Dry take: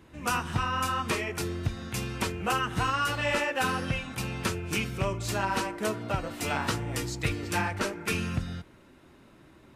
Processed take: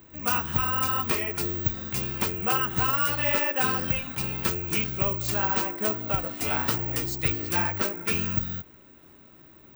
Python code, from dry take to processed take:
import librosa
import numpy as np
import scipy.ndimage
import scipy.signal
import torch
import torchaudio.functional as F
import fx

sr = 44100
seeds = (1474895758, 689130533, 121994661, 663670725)

y = fx.high_shelf(x, sr, hz=9500.0, db=5.0)
y = (np.kron(scipy.signal.resample_poly(y, 1, 2), np.eye(2)[0]) * 2)[:len(y)]